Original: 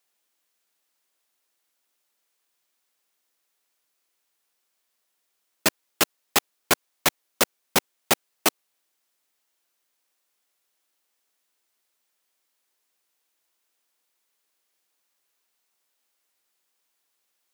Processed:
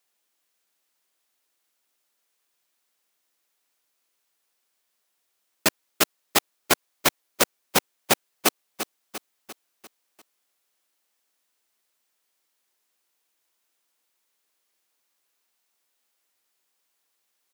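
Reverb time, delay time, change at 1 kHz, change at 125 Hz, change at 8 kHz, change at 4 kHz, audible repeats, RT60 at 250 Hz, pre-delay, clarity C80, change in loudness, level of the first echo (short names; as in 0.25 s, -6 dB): none, 0.346 s, +0.5 dB, +0.5 dB, +0.5 dB, +0.5 dB, 5, none, none, none, 0.0 dB, -11.0 dB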